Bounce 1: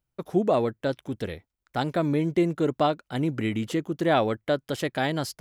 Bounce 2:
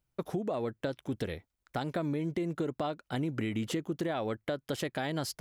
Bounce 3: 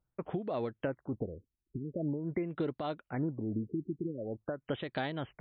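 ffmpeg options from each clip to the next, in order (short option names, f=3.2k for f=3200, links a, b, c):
-af "alimiter=limit=-21dB:level=0:latency=1:release=324,acompressor=threshold=-30dB:ratio=6,volume=1dB"
-af "tremolo=f=3.4:d=0.46,afftfilt=real='re*lt(b*sr/1024,400*pow(4700/400,0.5+0.5*sin(2*PI*0.45*pts/sr)))':imag='im*lt(b*sr/1024,400*pow(4700/400,0.5+0.5*sin(2*PI*0.45*pts/sr)))':win_size=1024:overlap=0.75"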